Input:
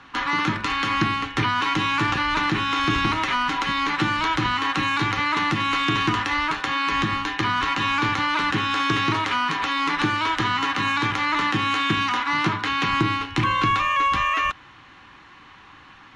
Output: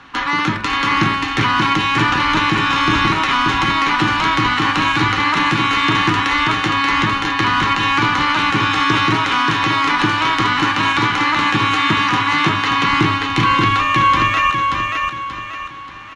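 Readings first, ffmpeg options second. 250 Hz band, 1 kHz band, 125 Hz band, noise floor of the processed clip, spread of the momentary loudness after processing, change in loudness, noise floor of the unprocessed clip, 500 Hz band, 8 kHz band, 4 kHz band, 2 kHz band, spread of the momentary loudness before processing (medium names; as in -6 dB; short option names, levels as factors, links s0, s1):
+7.0 dB, +7.0 dB, +7.0 dB, -28 dBFS, 4 LU, +7.0 dB, -48 dBFS, +7.0 dB, +7.0 dB, +7.0 dB, +7.0 dB, 2 LU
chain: -af "aecho=1:1:582|1164|1746|2328|2910:0.668|0.261|0.102|0.0396|0.0155,volume=1.78"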